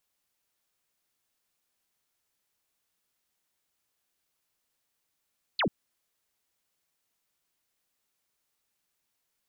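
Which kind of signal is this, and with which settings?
single falling chirp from 4,700 Hz, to 140 Hz, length 0.09 s sine, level −23.5 dB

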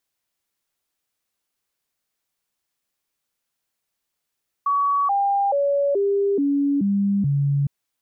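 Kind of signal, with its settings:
stepped sweep 1,130 Hz down, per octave 2, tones 7, 0.43 s, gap 0.00 s −17 dBFS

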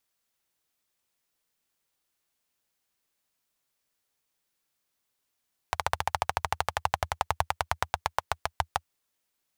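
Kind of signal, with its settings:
pulse-train model of a single-cylinder engine, changing speed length 3.13 s, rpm 1,800, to 700, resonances 82/830 Hz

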